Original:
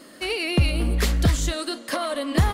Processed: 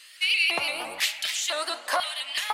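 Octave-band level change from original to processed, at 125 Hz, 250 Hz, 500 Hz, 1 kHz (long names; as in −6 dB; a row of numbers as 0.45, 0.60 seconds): below −35 dB, −21.5 dB, −7.0 dB, +0.5 dB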